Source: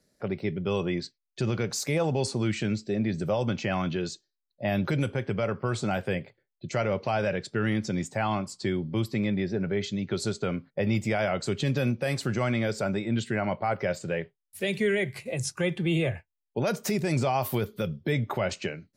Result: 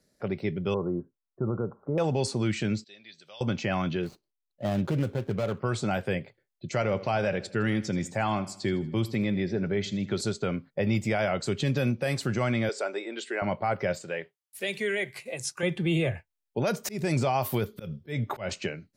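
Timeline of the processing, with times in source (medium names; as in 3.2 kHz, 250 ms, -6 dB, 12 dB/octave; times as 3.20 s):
0.74–1.98 s: rippled Chebyshev low-pass 1.4 kHz, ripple 3 dB
2.84–3.41 s: band-pass filter 3.7 kHz, Q 2.5
4.03–5.60 s: median filter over 25 samples
6.73–10.21 s: feedback delay 80 ms, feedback 47%, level -17 dB
12.69–13.42 s: elliptic band-pass 360–9100 Hz
14.02–15.63 s: high-pass 540 Hz 6 dB/octave
16.64–18.48 s: slow attack 148 ms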